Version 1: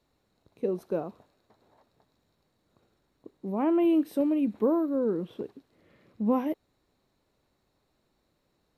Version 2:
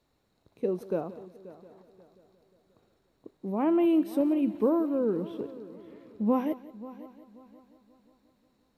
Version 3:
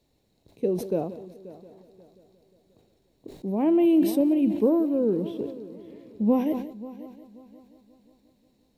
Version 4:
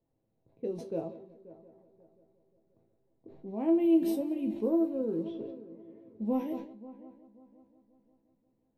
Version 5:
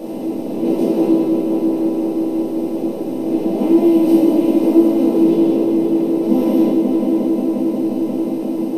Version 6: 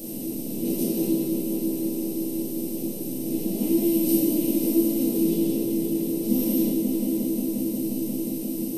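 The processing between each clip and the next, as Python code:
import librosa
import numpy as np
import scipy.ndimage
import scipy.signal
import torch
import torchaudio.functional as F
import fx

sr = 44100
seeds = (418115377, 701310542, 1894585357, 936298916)

y1 = fx.echo_heads(x, sr, ms=178, heads='first and third', feedback_pct=49, wet_db=-18)
y2 = fx.peak_eq(y1, sr, hz=1300.0, db=-14.5, octaves=0.91)
y2 = fx.sustainer(y2, sr, db_per_s=84.0)
y2 = F.gain(torch.from_numpy(y2), 4.5).numpy()
y3 = fx.env_lowpass(y2, sr, base_hz=1200.0, full_db=-19.5)
y3 = fx.resonator_bank(y3, sr, root=45, chord='minor', decay_s=0.2)
y3 = F.gain(torch.from_numpy(y3), 2.5).numpy()
y4 = fx.bin_compress(y3, sr, power=0.2)
y4 = fx.room_shoebox(y4, sr, seeds[0], volume_m3=270.0, walls='mixed', distance_m=2.4)
y4 = F.gain(torch.from_numpy(y4), -1.0).numpy()
y5 = fx.curve_eq(y4, sr, hz=(120.0, 970.0, 11000.0), db=(0, -21, 15))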